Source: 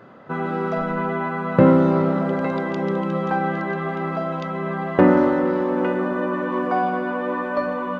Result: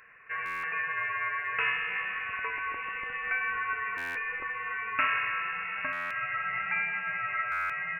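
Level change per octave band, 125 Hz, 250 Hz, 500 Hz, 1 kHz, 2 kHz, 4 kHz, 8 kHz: -30.0 dB, -36.5 dB, -28.5 dB, -9.0 dB, +2.0 dB, -0.5 dB, n/a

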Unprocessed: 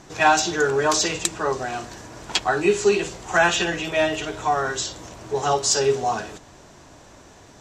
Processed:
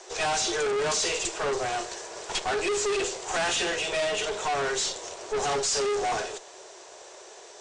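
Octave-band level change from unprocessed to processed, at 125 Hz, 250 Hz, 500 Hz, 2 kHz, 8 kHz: -11.0, -10.0, -5.5, -7.0, -3.0 dB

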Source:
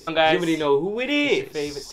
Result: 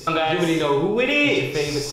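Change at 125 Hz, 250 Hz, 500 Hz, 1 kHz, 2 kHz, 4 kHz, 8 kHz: +7.0, +1.5, +0.5, 0.0, +2.5, +1.0, +5.5 dB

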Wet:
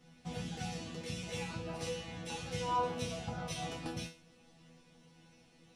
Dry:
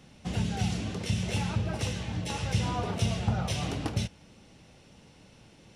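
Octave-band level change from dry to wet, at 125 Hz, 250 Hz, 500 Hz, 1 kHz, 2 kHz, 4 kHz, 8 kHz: -14.0, -10.0, -2.5, -1.5, -6.5, -7.0, -6.5 dB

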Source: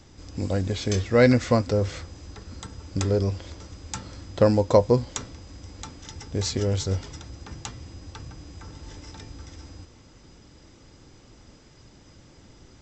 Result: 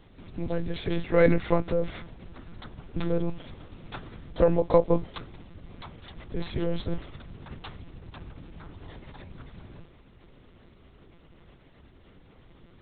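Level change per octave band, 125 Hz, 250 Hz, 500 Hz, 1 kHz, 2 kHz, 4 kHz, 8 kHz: -7.0 dB, -4.0 dB, -3.0 dB, -3.0 dB, -4.0 dB, -8.5 dB, under -40 dB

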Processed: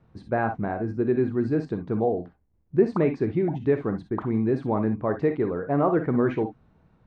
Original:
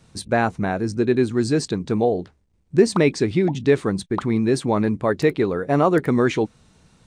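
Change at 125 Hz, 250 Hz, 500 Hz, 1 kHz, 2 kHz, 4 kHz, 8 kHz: -4.5 dB, -4.5 dB, -4.5 dB, -5.0 dB, -8.5 dB, under -20 dB, under -30 dB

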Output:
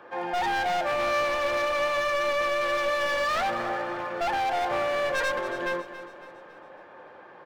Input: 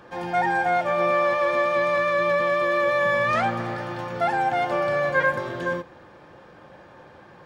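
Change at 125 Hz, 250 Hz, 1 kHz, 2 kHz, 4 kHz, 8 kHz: -12.5 dB, -6.0 dB, -3.5 dB, -4.0 dB, +4.5 dB, n/a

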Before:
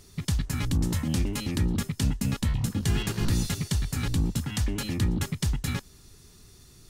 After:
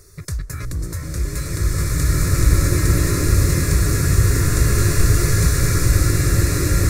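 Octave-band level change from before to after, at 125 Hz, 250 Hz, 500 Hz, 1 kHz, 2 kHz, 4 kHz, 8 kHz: +11.0, +5.5, +13.5, +11.0, +12.0, +6.5, +13.5 dB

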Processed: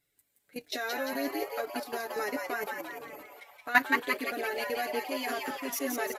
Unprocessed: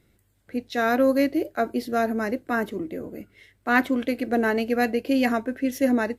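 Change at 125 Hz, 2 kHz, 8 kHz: under -15 dB, -3.0 dB, +3.0 dB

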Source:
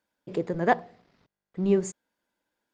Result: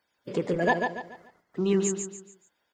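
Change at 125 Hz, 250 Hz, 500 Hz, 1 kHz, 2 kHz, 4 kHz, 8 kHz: 0.0, 0.0, 0.0, -2.0, +3.5, +6.5, +9.5 dB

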